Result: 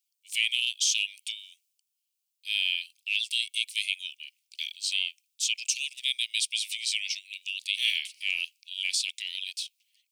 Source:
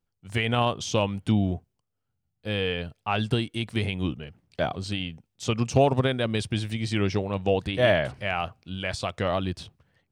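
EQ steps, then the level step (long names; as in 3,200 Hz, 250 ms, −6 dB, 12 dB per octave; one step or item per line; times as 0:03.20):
Butterworth high-pass 2,300 Hz 72 dB per octave
high-shelf EQ 3,800 Hz +11.5 dB
+2.0 dB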